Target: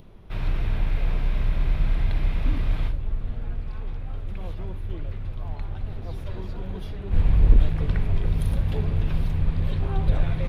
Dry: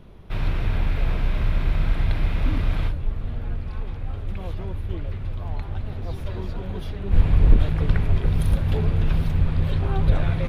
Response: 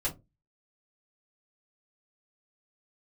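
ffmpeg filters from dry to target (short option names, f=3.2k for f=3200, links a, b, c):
-filter_complex "[0:a]adynamicequalizer=threshold=0.00251:dfrequency=1400:dqfactor=4.9:tfrequency=1400:tqfactor=4.9:attack=5:release=100:ratio=0.375:range=1.5:mode=cutabove:tftype=bell,acompressor=mode=upward:threshold=-40dB:ratio=2.5,asplit=2[a][b];[1:a]atrim=start_sample=2205,asetrate=57330,aresample=44100,adelay=53[c];[b][c]afir=irnorm=-1:irlink=0,volume=-17dB[d];[a][d]amix=inputs=2:normalize=0,volume=-4dB"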